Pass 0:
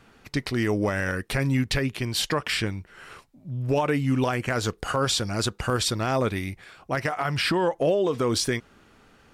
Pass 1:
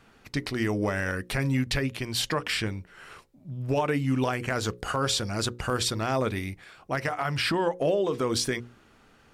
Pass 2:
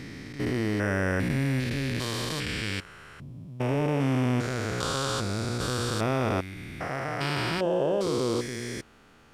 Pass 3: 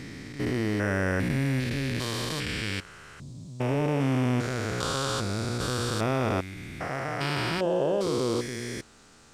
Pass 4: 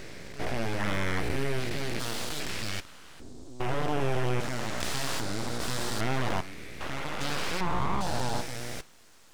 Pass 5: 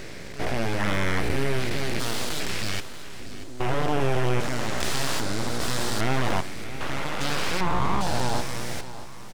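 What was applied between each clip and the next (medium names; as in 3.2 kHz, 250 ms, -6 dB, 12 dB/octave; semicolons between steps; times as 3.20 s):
hum notches 60/120/180/240/300/360/420/480/540 Hz; trim -2 dB
spectrogram pixelated in time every 400 ms; trim +3.5 dB
band noise 3.5–8.6 kHz -61 dBFS
de-hum 156 Hz, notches 37; full-wave rectifier
feedback delay 635 ms, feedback 44%, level -14.5 dB; trim +4.5 dB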